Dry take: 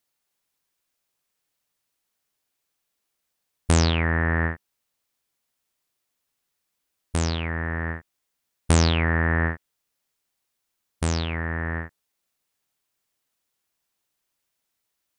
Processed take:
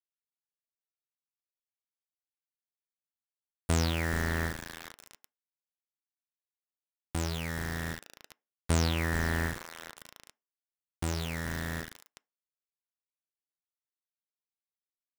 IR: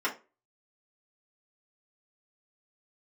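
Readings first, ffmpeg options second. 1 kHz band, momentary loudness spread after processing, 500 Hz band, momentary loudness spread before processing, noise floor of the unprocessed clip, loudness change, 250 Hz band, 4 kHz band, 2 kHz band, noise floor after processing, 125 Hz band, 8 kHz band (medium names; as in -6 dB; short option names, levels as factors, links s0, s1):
-8.0 dB, 17 LU, -7.5 dB, 14 LU, -79 dBFS, -8.0 dB, -7.5 dB, -7.0 dB, -8.0 dB, under -85 dBFS, -8.5 dB, -6.5 dB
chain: -filter_complex "[0:a]asplit=6[s0][s1][s2][s3][s4][s5];[s1]adelay=425,afreqshift=-110,volume=0.211[s6];[s2]adelay=850,afreqshift=-220,volume=0.11[s7];[s3]adelay=1275,afreqshift=-330,volume=0.0569[s8];[s4]adelay=1700,afreqshift=-440,volume=0.0299[s9];[s5]adelay=2125,afreqshift=-550,volume=0.0155[s10];[s0][s6][s7][s8][s9][s10]amix=inputs=6:normalize=0,acrusher=bits=4:mix=0:aa=0.000001,acompressor=mode=upward:threshold=0.02:ratio=2.5,asplit=2[s11][s12];[1:a]atrim=start_sample=2205[s13];[s12][s13]afir=irnorm=-1:irlink=0,volume=0.0473[s14];[s11][s14]amix=inputs=2:normalize=0,volume=0.376"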